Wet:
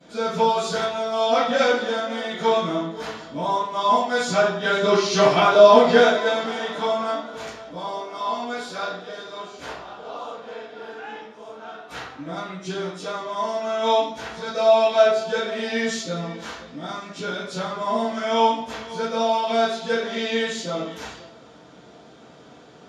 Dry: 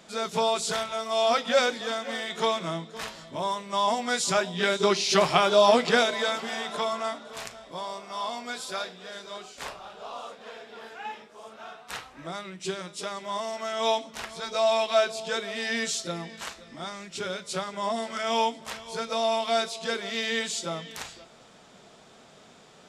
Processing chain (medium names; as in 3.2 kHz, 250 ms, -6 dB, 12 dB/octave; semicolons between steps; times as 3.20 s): 3.88–6.30 s: expander -26 dBFS; reverberation RT60 0.65 s, pre-delay 3 ms, DRR -20.5 dB; trim -17.5 dB